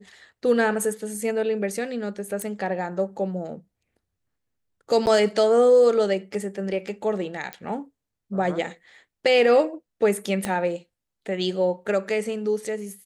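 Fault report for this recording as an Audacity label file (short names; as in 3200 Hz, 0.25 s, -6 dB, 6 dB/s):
2.420000	2.420000	pop -18 dBFS
5.060000	5.070000	gap 9.6 ms
7.530000	7.530000	pop -16 dBFS
10.450000	10.450000	pop -12 dBFS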